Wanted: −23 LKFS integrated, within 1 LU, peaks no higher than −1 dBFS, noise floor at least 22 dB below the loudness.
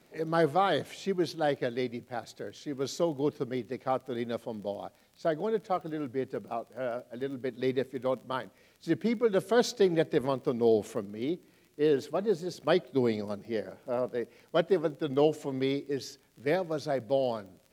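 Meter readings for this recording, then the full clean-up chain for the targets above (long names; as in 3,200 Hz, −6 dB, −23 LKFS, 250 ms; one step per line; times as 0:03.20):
crackle rate 23 per second; integrated loudness −31.0 LKFS; sample peak −12.0 dBFS; target loudness −23.0 LKFS
→ click removal
level +8 dB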